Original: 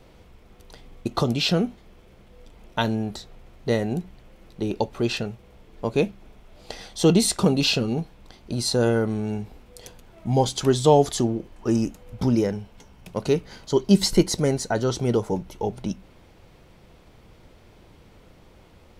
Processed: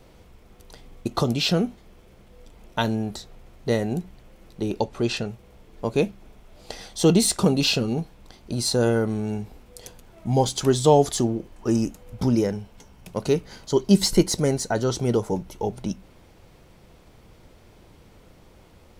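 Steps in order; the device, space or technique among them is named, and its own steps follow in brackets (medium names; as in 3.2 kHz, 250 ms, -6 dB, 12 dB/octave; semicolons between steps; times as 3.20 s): exciter from parts (in parallel at -5 dB: high-pass 4.5 kHz 12 dB/octave + saturation -27 dBFS, distortion -9 dB); 4.80–5.29 s: on the sum: low-pass 10 kHz 12 dB/octave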